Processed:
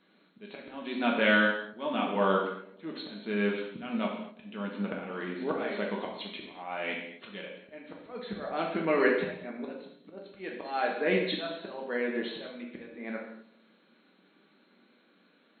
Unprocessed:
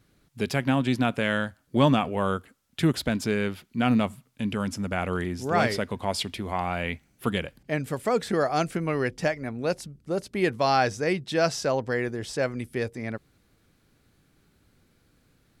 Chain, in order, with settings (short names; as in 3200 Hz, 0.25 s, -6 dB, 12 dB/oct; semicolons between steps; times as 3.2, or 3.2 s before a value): brick-wall FIR band-pass 180–4300 Hz; auto swell 0.658 s; on a send: darkening echo 0.111 s, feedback 62%, low-pass 1100 Hz, level -18 dB; on the sum: non-linear reverb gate 0.28 s falling, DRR -2 dB